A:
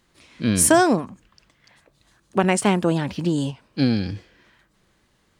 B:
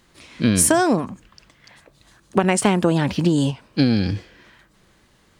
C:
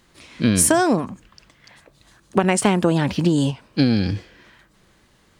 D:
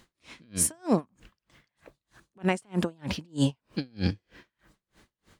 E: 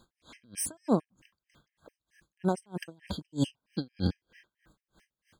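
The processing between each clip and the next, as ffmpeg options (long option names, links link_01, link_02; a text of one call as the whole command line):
ffmpeg -i in.wav -af "acompressor=threshold=-19dB:ratio=10,volume=6.5dB" out.wav
ffmpeg -i in.wav -af anull out.wav
ffmpeg -i in.wav -af "alimiter=limit=-12.5dB:level=0:latency=1:release=35,aeval=exprs='val(0)*pow(10,-38*(0.5-0.5*cos(2*PI*3.2*n/s))/20)':channel_layout=same" out.wav
ffmpeg -i in.wav -filter_complex "[0:a]acrossover=split=1500[link_01][link_02];[link_02]asoftclip=type=hard:threshold=-25dB[link_03];[link_01][link_03]amix=inputs=2:normalize=0,afftfilt=real='re*gt(sin(2*PI*4.5*pts/sr)*(1-2*mod(floor(b*sr/1024/1600),2)),0)':imag='im*gt(sin(2*PI*4.5*pts/sr)*(1-2*mod(floor(b*sr/1024/1600),2)),0)':win_size=1024:overlap=0.75,volume=-1.5dB" out.wav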